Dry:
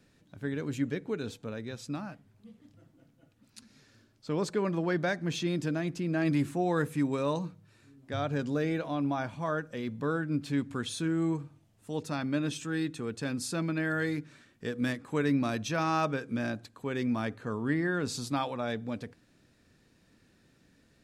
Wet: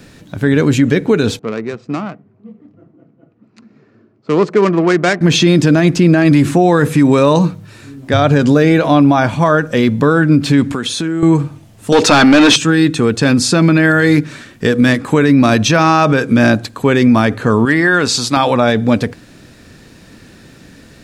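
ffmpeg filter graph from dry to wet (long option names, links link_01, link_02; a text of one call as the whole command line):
ffmpeg -i in.wav -filter_complex "[0:a]asettb=1/sr,asplit=3[link_01][link_02][link_03];[link_01]atrim=end=1.394[link_04];[link_02]atrim=start=1.39:end=5.21,asetpts=PTS-STARTPTS,afade=type=in:duration=0.004:curve=qsin,afade=type=out:start_time=3.816:duration=0.004:curve=qsin,adynamicsmooth=sensitivity=5:basefreq=810,highpass=260,equalizer=frequency=270:width_type=q:width=4:gain=-8,equalizer=frequency=550:width_type=q:width=4:gain=-9,equalizer=frequency=860:width_type=q:width=4:gain=-8,equalizer=frequency=1600:width_type=q:width=4:gain=-6,equalizer=frequency=3500:width_type=q:width=4:gain=-6,equalizer=frequency=7500:width_type=q:width=4:gain=3,lowpass=frequency=8900:width=0.5412,lowpass=frequency=8900:width=1.3066[link_05];[link_03]atrim=start=5.206[link_06];[link_04][link_05]acrossfade=duration=0.004:curve1=hsin:curve2=qsin[link_07];[link_07][link_06]acrossfade=duration=0.004:curve1=qsin:curve2=hsin,asettb=1/sr,asplit=3[link_08][link_09][link_10];[link_08]atrim=end=10.724[link_11];[link_09]atrim=start=10.72:end=11.23,asetpts=PTS-STARTPTS,afade=type=in:duration=0.004:curve=qsin,afade=type=out:start_time=0.506:duration=0.004:curve=qsin,highpass=160,acompressor=threshold=-39dB:ratio=6:attack=3.2:release=140:knee=1:detection=peak[link_12];[link_10]atrim=start=11.226[link_13];[link_11][link_12]acrossfade=duration=0.004:curve1=hsin:curve2=qsin[link_14];[link_14][link_13]acrossfade=duration=0.004:curve1=qsin:curve2=hsin,asettb=1/sr,asplit=3[link_15][link_16][link_17];[link_15]atrim=end=11.924[link_18];[link_16]atrim=start=11.92:end=12.56,asetpts=PTS-STARTPTS,afade=type=in:duration=0.004:curve=qsin,afade=type=out:start_time=0.636:duration=0.004:curve=qsin,equalizer=frequency=150:width_type=o:width=0.21:gain=-14,asplit=2[link_19][link_20];[link_20]highpass=frequency=720:poles=1,volume=22dB,asoftclip=type=tanh:threshold=-20.5dB[link_21];[link_19][link_21]amix=inputs=2:normalize=0,lowpass=frequency=6100:poles=1,volume=-6dB[link_22];[link_17]atrim=start=12.556[link_23];[link_18][link_22]acrossfade=duration=0.004:curve1=hsin:curve2=qsin[link_24];[link_24][link_23]acrossfade=duration=0.004:curve1=qsin:curve2=hsin,asettb=1/sr,asplit=3[link_25][link_26][link_27];[link_25]atrim=end=17.654[link_28];[link_26]atrim=start=17.65:end=18.37,asetpts=PTS-STARTPTS,afade=type=in:duration=0.004:curve=qsin,afade=type=out:start_time=0.716:duration=0.004:curve=qsin,lowshelf=frequency=480:gain=-11,asoftclip=type=hard:threshold=-24dB[link_29];[link_27]atrim=start=18.366[link_30];[link_28][link_29]acrossfade=duration=0.004:curve1=hsin:curve2=qsin[link_31];[link_31][link_30]acrossfade=duration=0.004:curve1=qsin:curve2=hsin,acrossover=split=7800[link_32][link_33];[link_33]acompressor=threshold=-59dB:ratio=4:attack=1:release=60[link_34];[link_32][link_34]amix=inputs=2:normalize=0,alimiter=level_in=25dB:limit=-1dB:release=50:level=0:latency=1,volume=-1dB" out.wav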